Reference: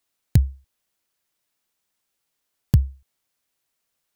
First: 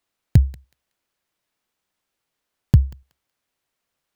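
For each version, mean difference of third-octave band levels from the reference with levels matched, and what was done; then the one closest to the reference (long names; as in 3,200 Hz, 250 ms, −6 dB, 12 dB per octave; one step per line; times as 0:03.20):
1.5 dB: high-shelf EQ 4,400 Hz −9.5 dB
feedback echo with a high-pass in the loop 186 ms, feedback 21%, high-pass 1,100 Hz, level −15 dB
level +3 dB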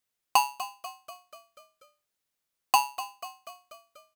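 19.0 dB: echo with shifted repeats 243 ms, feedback 58%, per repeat +42 Hz, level −13.5 dB
ring modulator with a square carrier 910 Hz
level −6.5 dB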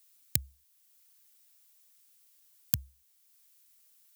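8.0 dB: spectral tilt +4.5 dB per octave
in parallel at −2 dB: downward compressor, threshold −53 dBFS, peak gain reduction 35.5 dB
on the sum: level −7.5 dB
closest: first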